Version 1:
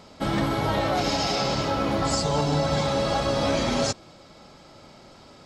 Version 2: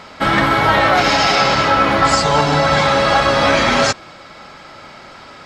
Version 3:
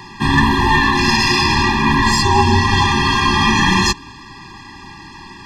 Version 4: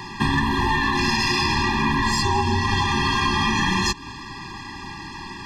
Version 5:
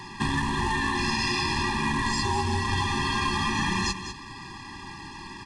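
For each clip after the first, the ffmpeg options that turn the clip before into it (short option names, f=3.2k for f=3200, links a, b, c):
-af "equalizer=f=1.7k:w=0.64:g=13.5,volume=5dB"
-af "acontrast=56,afreqshift=-56,afftfilt=real='re*eq(mod(floor(b*sr/1024/400),2),0)':imag='im*eq(mod(floor(b*sr/1024/400),2),0)':win_size=1024:overlap=0.75"
-af "acompressor=threshold=-19dB:ratio=6,volume=1dB"
-filter_complex "[0:a]acrusher=bits=3:mode=log:mix=0:aa=0.000001,asplit=2[a][b];[b]aecho=0:1:199:0.316[c];[a][c]amix=inputs=2:normalize=0,aresample=22050,aresample=44100,volume=-6dB"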